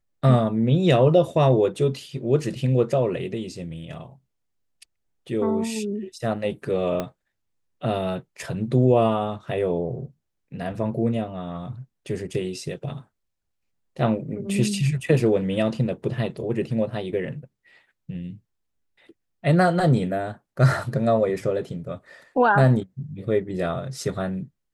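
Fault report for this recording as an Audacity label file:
7.000000	7.000000	pop -13 dBFS

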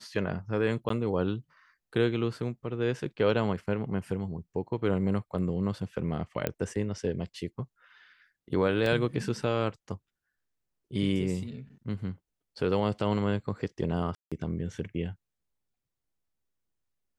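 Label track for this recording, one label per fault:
0.890000	0.900000	dropout
6.470000	6.470000	pop -14 dBFS
8.860000	8.860000	dropout 2.2 ms
14.150000	14.320000	dropout 166 ms

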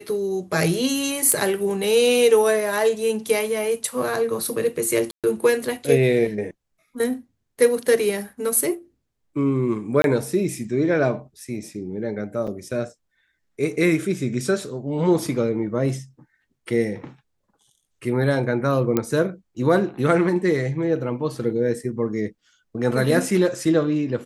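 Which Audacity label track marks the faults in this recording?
1.320000	1.320000	pop -6 dBFS
5.110000	5.240000	dropout 127 ms
10.020000	10.040000	dropout 22 ms
12.470000	12.480000	dropout 6.1 ms
18.970000	18.970000	pop -7 dBFS

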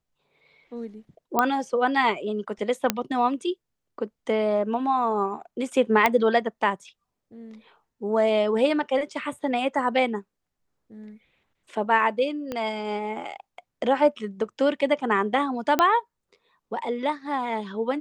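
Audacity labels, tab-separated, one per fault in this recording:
1.390000	1.390000	pop -7 dBFS
2.900000	2.900000	pop -4 dBFS
6.060000	6.060000	pop -6 dBFS
12.520000	12.520000	pop -17 dBFS
15.790000	15.790000	pop -6 dBFS

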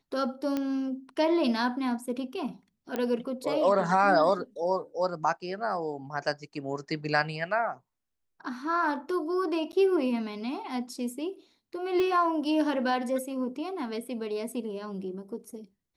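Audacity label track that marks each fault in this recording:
0.570000	0.570000	pop -17 dBFS
2.960000	2.960000	pop -17 dBFS
9.720000	9.730000	dropout 9.7 ms
12.000000	12.000000	pop -18 dBFS

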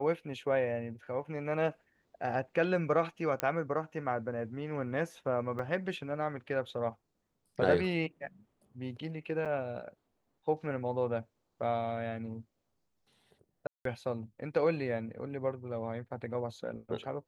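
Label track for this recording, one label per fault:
3.400000	3.400000	pop -15 dBFS
5.590000	5.590000	dropout 4.6 ms
9.450000	9.460000	dropout 6.9 ms
13.670000	13.850000	dropout 183 ms

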